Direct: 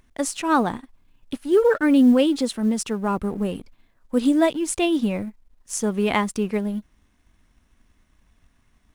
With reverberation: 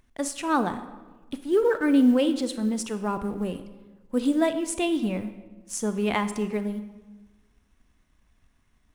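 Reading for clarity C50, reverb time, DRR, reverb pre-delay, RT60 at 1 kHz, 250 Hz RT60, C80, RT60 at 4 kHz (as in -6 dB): 11.0 dB, 1.3 s, 10.0 dB, 29 ms, 1.2 s, 1.4 s, 13.0 dB, 0.85 s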